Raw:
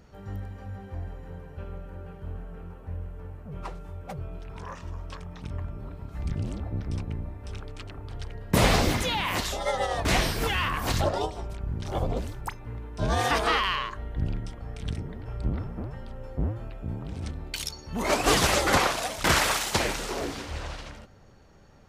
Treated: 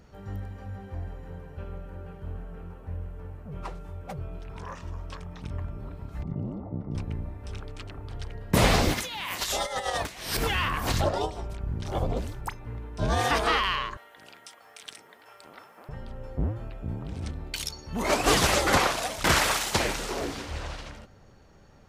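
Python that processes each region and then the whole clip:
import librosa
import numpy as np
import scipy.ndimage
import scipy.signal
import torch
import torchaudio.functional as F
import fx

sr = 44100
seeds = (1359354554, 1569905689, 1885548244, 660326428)

y = fx.chain(x, sr, fx.savgol(points=65),
    fx.low_shelf_res(hz=100.0, db=-10.5, q=1.5), at=(6.23, 6.95))
y = fx.chain(y, sr, fx.tilt_eq(slope=2.0),
    fx.over_compress(threshold_db=-31.0, ratio=-0.5), at=(8.94, 10.37))
y = fx.chain(y, sr, fx.highpass(hz=900.0, slope=12),
    fx.high_shelf(hz=7300.0, db=11.5), at=(13.97, 15.89))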